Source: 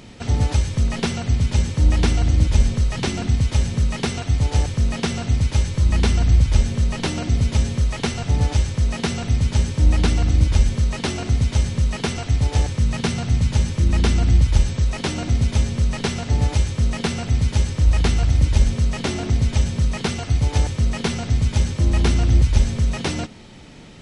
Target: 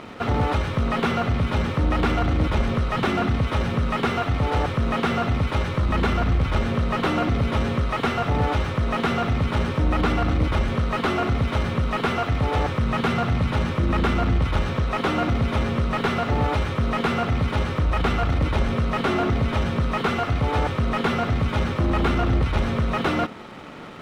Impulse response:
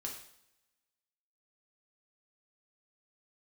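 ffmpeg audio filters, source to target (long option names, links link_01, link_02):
-filter_complex "[0:a]superequalizer=10b=2:14b=0.562:15b=0.355,asplit=2[link_01][link_02];[link_02]aeval=exprs='0.158*(abs(mod(val(0)/0.158+3,4)-2)-1)':channel_layout=same,volume=-11.5dB[link_03];[link_01][link_03]amix=inputs=2:normalize=0,asplit=2[link_04][link_05];[link_05]highpass=frequency=720:poles=1,volume=25dB,asoftclip=type=tanh:threshold=-4dB[link_06];[link_04][link_06]amix=inputs=2:normalize=0,lowpass=frequency=1400:poles=1,volume=-6dB,areverse,acompressor=mode=upward:threshold=-29dB:ratio=2.5,areverse,aeval=exprs='sgn(val(0))*max(abs(val(0))-0.0141,0)':channel_layout=same,highshelf=frequency=2900:gain=-7.5,volume=-5dB"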